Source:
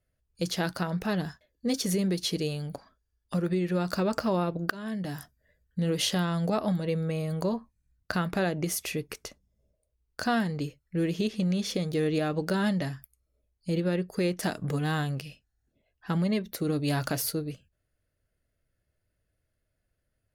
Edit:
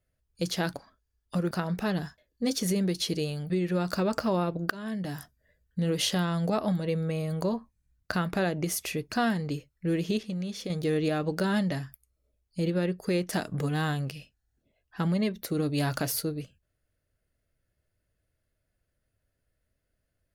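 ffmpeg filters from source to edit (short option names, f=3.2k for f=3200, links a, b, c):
-filter_complex "[0:a]asplit=7[a][b][c][d][e][f][g];[a]atrim=end=0.742[h];[b]atrim=start=2.728:end=3.502[i];[c]atrim=start=0.738:end=2.732[j];[d]atrim=start=3.498:end=9.122[k];[e]atrim=start=10.218:end=11.332[l];[f]atrim=start=11.328:end=11.802,asetpts=PTS-STARTPTS,volume=-6dB[m];[g]atrim=start=11.798[n];[h][i]acrossfade=d=0.004:c1=hsin:c2=hsin[o];[o][j]acrossfade=d=0.004:c1=hsin:c2=hsin[p];[p][k]acrossfade=d=0.004:c1=hsin:c2=hsin[q];[q][l]acrossfade=d=0.004:c1=hsin:c2=hsin[r];[r][m]acrossfade=d=0.004:c1=hsin:c2=hsin[s];[s][n]acrossfade=d=0.004:c1=hsin:c2=hsin"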